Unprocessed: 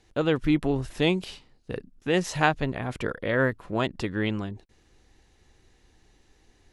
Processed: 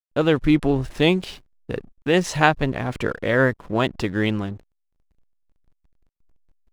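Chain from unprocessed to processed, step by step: backlash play -44 dBFS; gain +5.5 dB

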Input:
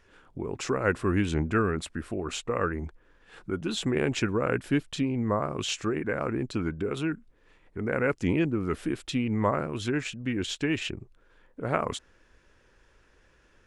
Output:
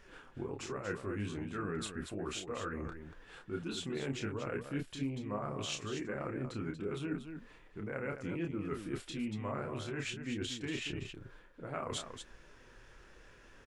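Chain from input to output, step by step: reverse; compressor 5:1, threshold -41 dBFS, peak gain reduction 19 dB; reverse; flange 1.3 Hz, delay 5 ms, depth 3.6 ms, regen -40%; loudspeakers at several distances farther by 10 m -5 dB, 81 m -8 dB; gain +6 dB

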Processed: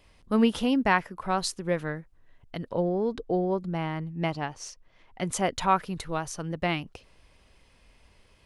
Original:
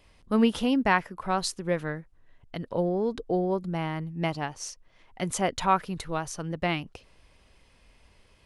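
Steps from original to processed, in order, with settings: 2.73–5.33 high shelf 8300 Hz -10 dB

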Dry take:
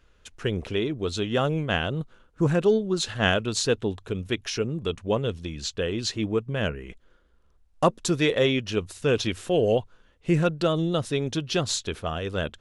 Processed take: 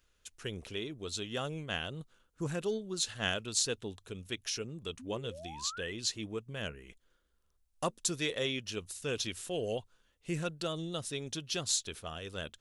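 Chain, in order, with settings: painted sound rise, 4.99–5.93, 240–2100 Hz -34 dBFS; pre-emphasis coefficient 0.8

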